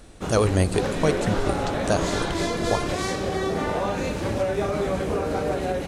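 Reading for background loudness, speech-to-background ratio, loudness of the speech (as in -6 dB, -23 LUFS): -26.5 LUFS, 0.5 dB, -26.0 LUFS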